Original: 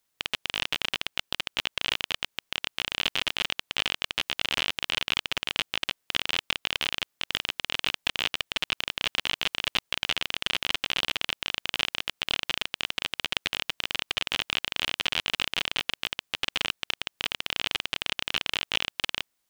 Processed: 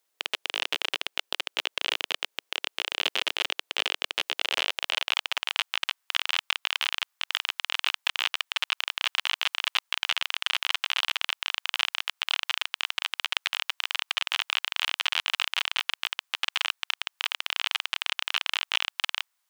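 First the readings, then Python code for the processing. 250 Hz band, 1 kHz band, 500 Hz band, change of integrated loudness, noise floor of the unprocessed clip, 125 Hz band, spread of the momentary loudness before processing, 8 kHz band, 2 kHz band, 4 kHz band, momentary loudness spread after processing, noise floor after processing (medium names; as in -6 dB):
under -10 dB, +2.0 dB, -2.0 dB, +0.5 dB, -77 dBFS, under -20 dB, 4 LU, 0.0 dB, +1.0 dB, +0.5 dB, 4 LU, -77 dBFS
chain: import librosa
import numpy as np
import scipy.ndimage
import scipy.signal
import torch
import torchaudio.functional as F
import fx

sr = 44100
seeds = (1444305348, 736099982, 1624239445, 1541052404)

y = fx.filter_sweep_highpass(x, sr, from_hz=420.0, to_hz=1000.0, start_s=4.29, end_s=5.7, q=1.4)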